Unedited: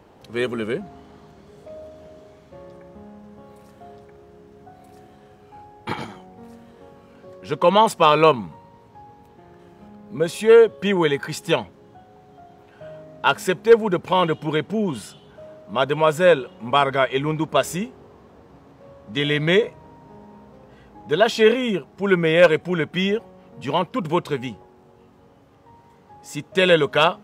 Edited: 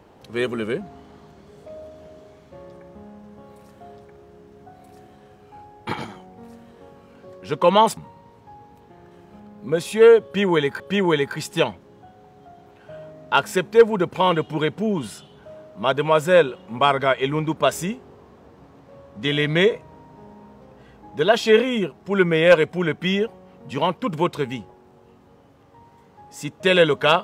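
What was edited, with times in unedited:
7.97–8.45 s: delete
10.72–11.28 s: loop, 2 plays

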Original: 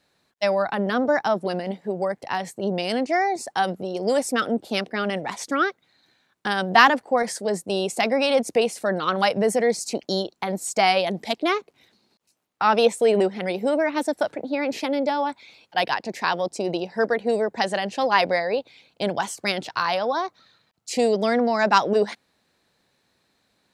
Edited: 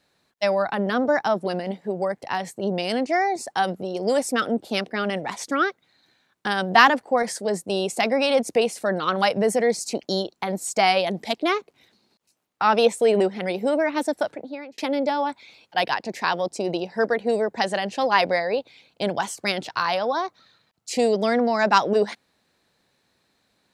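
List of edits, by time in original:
14.16–14.78 s: fade out linear

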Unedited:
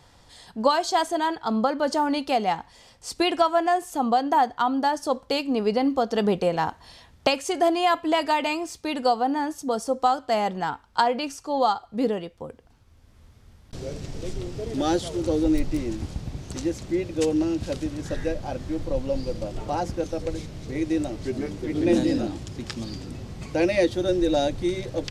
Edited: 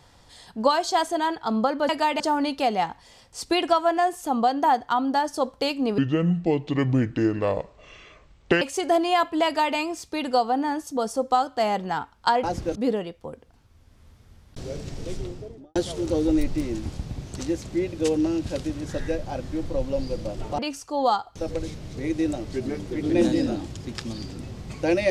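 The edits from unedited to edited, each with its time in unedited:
5.67–7.33 s: speed 63%
8.17–8.48 s: copy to 1.89 s
11.15–11.92 s: swap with 19.75–20.07 s
14.30–14.92 s: studio fade out

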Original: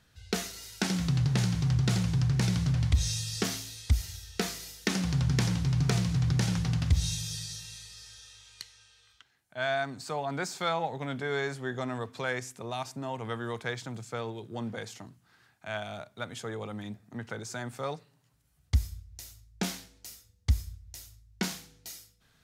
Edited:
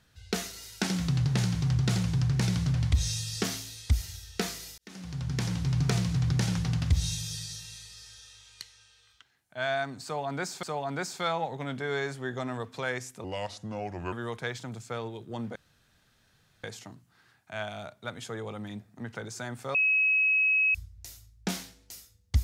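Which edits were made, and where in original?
4.78–5.74 s: fade in
10.04–10.63 s: loop, 2 plays
12.65–13.35 s: speed 79%
14.78 s: insert room tone 1.08 s
17.89–18.89 s: bleep 2.56 kHz -21 dBFS

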